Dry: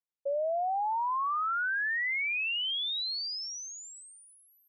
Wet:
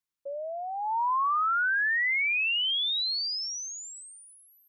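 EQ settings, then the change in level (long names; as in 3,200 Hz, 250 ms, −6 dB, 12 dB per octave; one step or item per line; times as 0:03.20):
flat-topped bell 580 Hz −9.5 dB 1.1 octaves
+4.5 dB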